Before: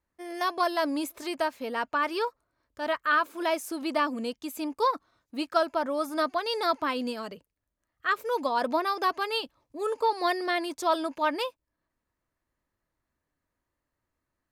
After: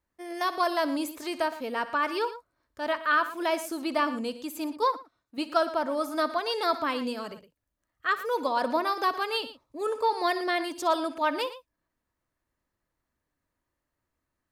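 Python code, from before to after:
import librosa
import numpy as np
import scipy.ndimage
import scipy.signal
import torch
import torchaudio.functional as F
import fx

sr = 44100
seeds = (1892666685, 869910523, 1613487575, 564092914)

p1 = x + fx.echo_multitap(x, sr, ms=(61, 115), db=(-16.0, -14.5), dry=0)
y = fx.upward_expand(p1, sr, threshold_db=-35.0, expansion=1.5, at=(4.77, 5.38))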